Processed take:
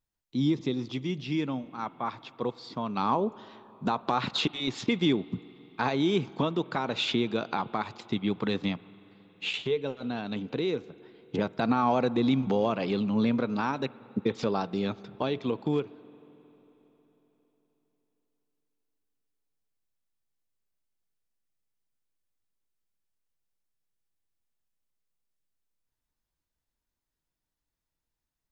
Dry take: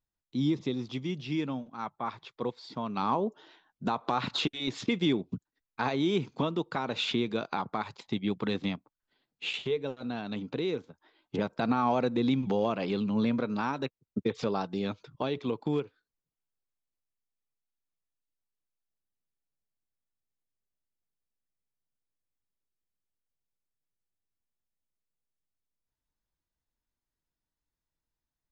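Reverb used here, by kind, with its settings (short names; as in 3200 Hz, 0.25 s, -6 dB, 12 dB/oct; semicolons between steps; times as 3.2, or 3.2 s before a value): spring tank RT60 4 s, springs 45/51 ms, chirp 70 ms, DRR 19.5 dB; gain +2 dB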